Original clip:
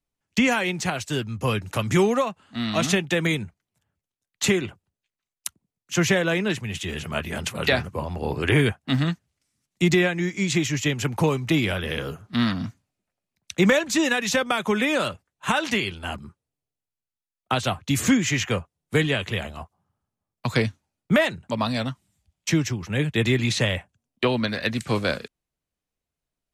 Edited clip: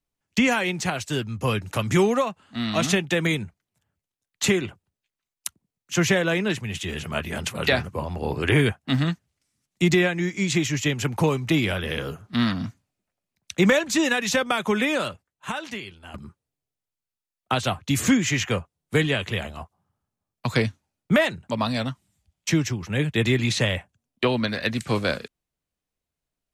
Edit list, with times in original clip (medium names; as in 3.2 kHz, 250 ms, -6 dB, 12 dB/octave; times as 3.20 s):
14.82–16.14 s: fade out quadratic, to -12 dB